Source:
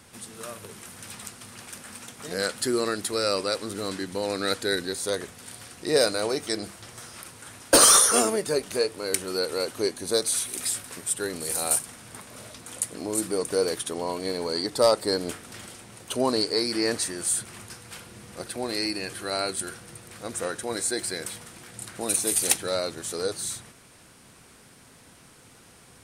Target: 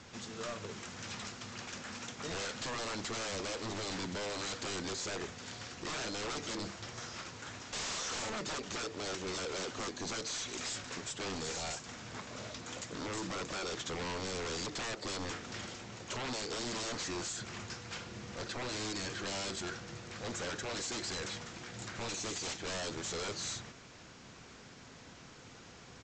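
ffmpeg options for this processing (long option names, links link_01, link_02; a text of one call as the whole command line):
ffmpeg -i in.wav -af "acompressor=threshold=-25dB:ratio=6,aresample=16000,aeval=exprs='0.0211*(abs(mod(val(0)/0.0211+3,4)-2)-1)':channel_layout=same,aresample=44100" out.wav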